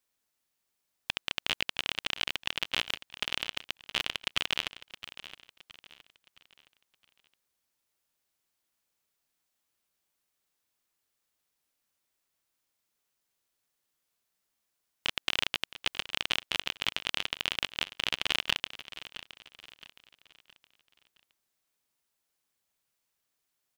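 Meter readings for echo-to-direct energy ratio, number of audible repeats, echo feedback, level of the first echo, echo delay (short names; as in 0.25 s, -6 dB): -14.0 dB, 3, 39%, -14.5 dB, 0.667 s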